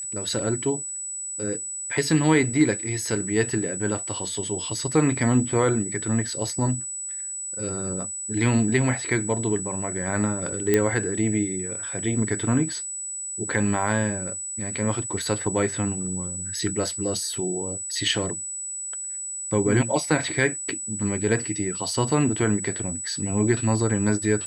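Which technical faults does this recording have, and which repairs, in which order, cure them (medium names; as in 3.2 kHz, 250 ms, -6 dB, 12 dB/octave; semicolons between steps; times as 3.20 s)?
whine 7.9 kHz -30 dBFS
10.74 s: pop -6 dBFS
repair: de-click; band-stop 7.9 kHz, Q 30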